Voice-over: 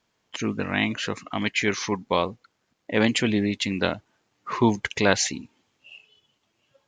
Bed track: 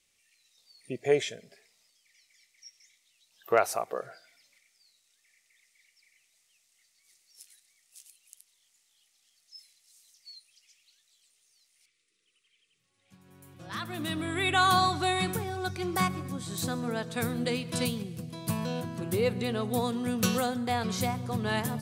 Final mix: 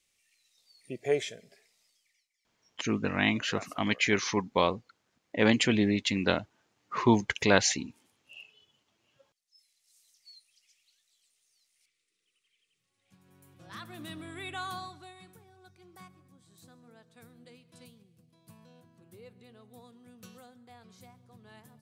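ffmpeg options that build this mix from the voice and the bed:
ffmpeg -i stem1.wav -i stem2.wav -filter_complex "[0:a]adelay=2450,volume=-2.5dB[link_01];[1:a]volume=11dB,afade=type=out:start_time=1.93:duration=0.36:silence=0.158489,afade=type=in:start_time=9.46:duration=0.51:silence=0.199526,afade=type=out:start_time=13.21:duration=1.93:silence=0.105925[link_02];[link_01][link_02]amix=inputs=2:normalize=0" out.wav

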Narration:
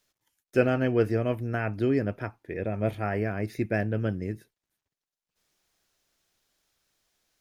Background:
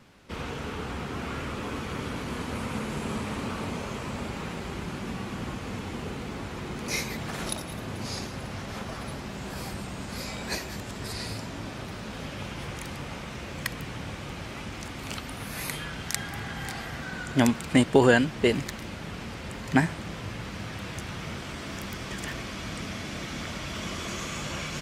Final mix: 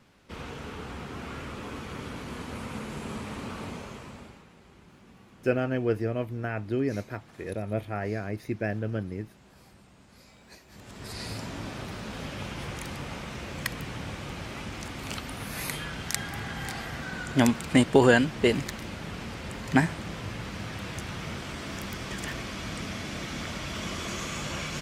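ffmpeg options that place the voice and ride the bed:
ffmpeg -i stem1.wav -i stem2.wav -filter_complex "[0:a]adelay=4900,volume=-3dB[link_01];[1:a]volume=15dB,afade=type=out:start_time=3.67:duration=0.78:silence=0.177828,afade=type=in:start_time=10.66:duration=0.79:silence=0.105925[link_02];[link_01][link_02]amix=inputs=2:normalize=0" out.wav

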